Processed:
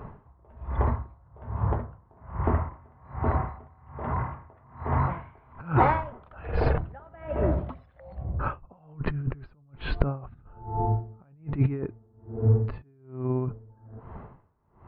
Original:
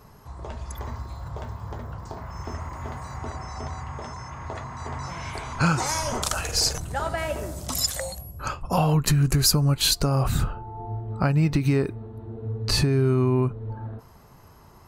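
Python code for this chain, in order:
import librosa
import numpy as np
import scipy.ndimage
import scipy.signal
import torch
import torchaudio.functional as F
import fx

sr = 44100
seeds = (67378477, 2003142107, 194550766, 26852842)

y = scipy.ndimage.gaussian_filter1d(x, 4.5, mode='constant')
y = fx.over_compress(y, sr, threshold_db=-26.0, ratio=-0.5)
y = y * 10.0 ** (-32 * (0.5 - 0.5 * np.cos(2.0 * np.pi * 1.2 * np.arange(len(y)) / sr)) / 20.0)
y = y * librosa.db_to_amplitude(7.5)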